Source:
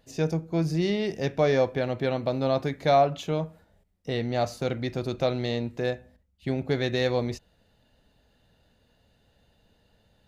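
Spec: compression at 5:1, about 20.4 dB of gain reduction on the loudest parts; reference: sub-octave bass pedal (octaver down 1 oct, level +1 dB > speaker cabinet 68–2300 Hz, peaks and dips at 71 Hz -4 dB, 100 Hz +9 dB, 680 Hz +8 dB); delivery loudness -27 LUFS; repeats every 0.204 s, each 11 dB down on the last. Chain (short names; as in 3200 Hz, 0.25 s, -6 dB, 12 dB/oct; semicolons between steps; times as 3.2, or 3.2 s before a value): compressor 5:1, threshold -40 dBFS; feedback echo 0.204 s, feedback 28%, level -11 dB; octaver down 1 oct, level +1 dB; speaker cabinet 68–2300 Hz, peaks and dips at 71 Hz -4 dB, 100 Hz +9 dB, 680 Hz +8 dB; gain +12 dB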